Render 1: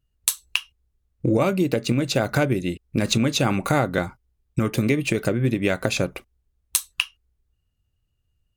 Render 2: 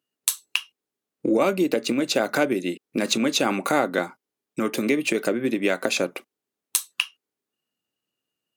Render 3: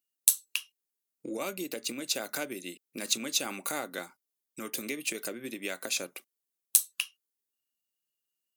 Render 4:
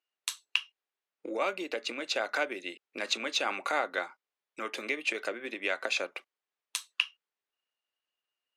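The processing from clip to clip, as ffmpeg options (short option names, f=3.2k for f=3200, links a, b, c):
-filter_complex "[0:a]asplit=2[a][b];[b]alimiter=limit=-11dB:level=0:latency=1,volume=-3dB[c];[a][c]amix=inputs=2:normalize=0,highpass=f=230:w=0.5412,highpass=f=230:w=1.3066,volume=-3.5dB"
-af "crystalizer=i=5.5:c=0,volume=-16.5dB"
-af "highpass=550,lowpass=2.6k,volume=8dB"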